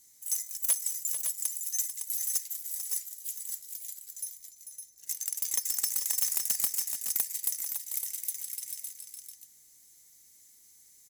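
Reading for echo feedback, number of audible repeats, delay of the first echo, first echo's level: repeats not evenly spaced, 2, 443 ms, −9.5 dB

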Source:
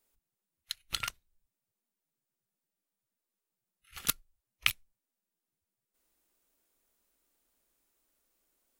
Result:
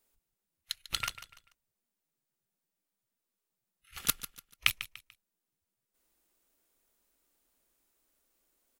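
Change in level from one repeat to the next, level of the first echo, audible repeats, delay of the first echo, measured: −9.5 dB, −14.0 dB, 3, 146 ms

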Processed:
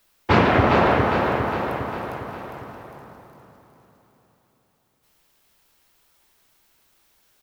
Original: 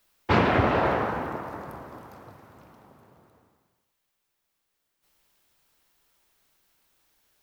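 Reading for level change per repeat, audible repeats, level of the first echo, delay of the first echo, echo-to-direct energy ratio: −5.0 dB, 5, −5.0 dB, 405 ms, −3.5 dB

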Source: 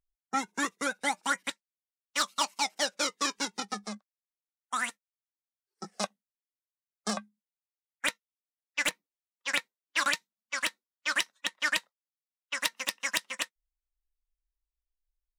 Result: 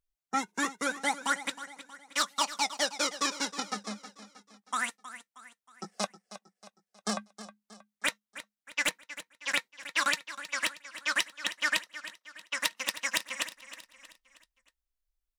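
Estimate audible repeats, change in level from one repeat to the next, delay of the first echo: 4, −7.0 dB, 316 ms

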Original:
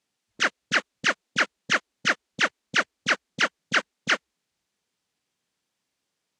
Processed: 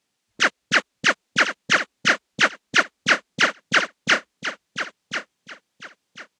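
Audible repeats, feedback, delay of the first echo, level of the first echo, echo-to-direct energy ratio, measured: 3, 24%, 1,041 ms, −9.5 dB, −9.0 dB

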